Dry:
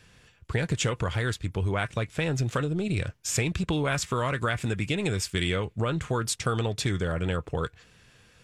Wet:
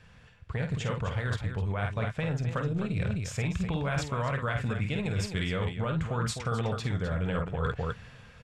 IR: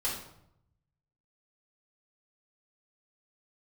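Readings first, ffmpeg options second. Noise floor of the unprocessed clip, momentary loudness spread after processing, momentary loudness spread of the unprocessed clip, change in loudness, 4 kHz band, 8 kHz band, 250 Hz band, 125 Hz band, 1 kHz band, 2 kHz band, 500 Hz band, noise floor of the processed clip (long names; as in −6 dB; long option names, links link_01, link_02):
−60 dBFS, 2 LU, 3 LU, −3.0 dB, −7.0 dB, −10.5 dB, −2.5 dB, −1.0 dB, −2.5 dB, −4.0 dB, −4.0 dB, −54 dBFS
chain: -af "equalizer=frequency=340:width_type=o:width=0.56:gain=-10.5,aecho=1:1:49.56|256.6:0.447|0.316,dynaudnorm=framelen=510:gausssize=7:maxgain=11.5dB,lowpass=frequency=1600:poles=1,areverse,acompressor=threshold=-30dB:ratio=12,areverse,volume=3dB"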